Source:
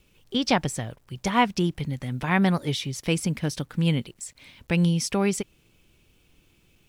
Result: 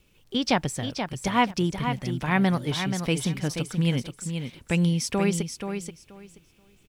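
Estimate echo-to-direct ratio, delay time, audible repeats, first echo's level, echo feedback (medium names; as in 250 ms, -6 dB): -7.5 dB, 480 ms, 2, -7.5 dB, 18%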